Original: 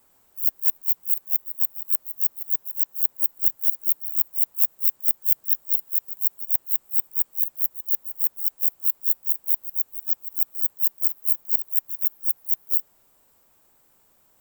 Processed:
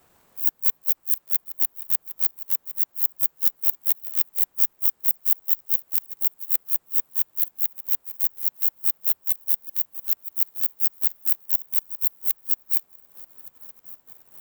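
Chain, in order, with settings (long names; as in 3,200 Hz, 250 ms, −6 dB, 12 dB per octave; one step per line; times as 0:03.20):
high-shelf EQ 5,400 Hz −9 dB
feedback echo with a high-pass in the loop 1,169 ms, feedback 67%, level −20 dB
transient designer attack +3 dB, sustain −8 dB
ring modulator with a square carrier 160 Hz
level +6.5 dB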